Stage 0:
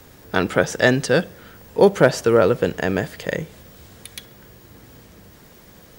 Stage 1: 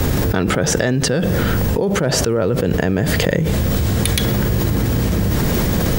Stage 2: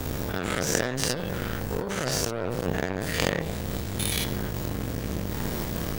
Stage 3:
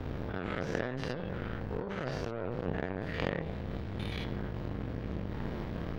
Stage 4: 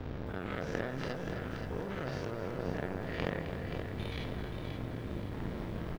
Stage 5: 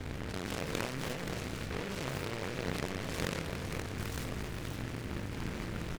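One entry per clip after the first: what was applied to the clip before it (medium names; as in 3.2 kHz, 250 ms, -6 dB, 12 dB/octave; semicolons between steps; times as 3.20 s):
bass shelf 320 Hz +11 dB; level flattener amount 100%; trim -12.5 dB
every event in the spectrogram widened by 120 ms; power-law waveshaper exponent 2; trim -5.5 dB
distance through air 330 m; trim -6 dB
feedback delay 527 ms, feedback 45%, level -8 dB; bit-crushed delay 262 ms, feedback 55%, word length 9-bit, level -10 dB; trim -2.5 dB
delay time shaken by noise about 1.5 kHz, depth 0.22 ms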